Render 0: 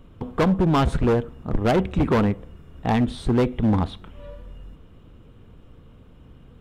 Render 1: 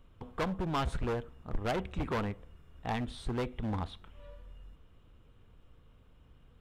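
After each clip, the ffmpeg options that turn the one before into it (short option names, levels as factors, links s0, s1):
-af "equalizer=f=230:t=o:w=2.7:g=-8,volume=0.376"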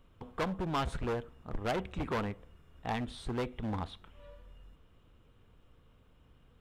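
-af "lowshelf=f=110:g=-4.5"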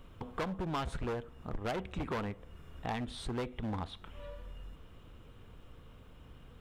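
-af "acompressor=threshold=0.00282:ratio=2,volume=2.66"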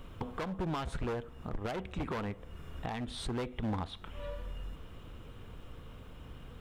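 -af "alimiter=level_in=2.51:limit=0.0631:level=0:latency=1:release=462,volume=0.398,volume=1.88"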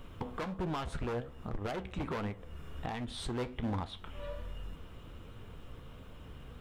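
-af "flanger=delay=8.2:depth=9.1:regen=69:speed=1.3:shape=triangular,volume=1.58"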